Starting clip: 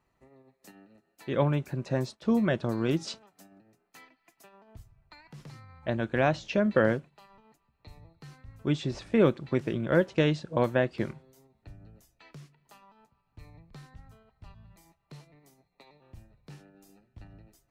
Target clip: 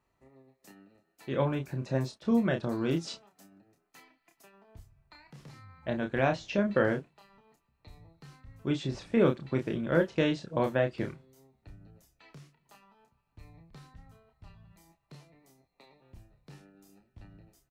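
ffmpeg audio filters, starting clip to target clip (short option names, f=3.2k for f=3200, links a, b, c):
-filter_complex "[0:a]asplit=2[a][b];[b]adelay=30,volume=-5.5dB[c];[a][c]amix=inputs=2:normalize=0,volume=-3dB"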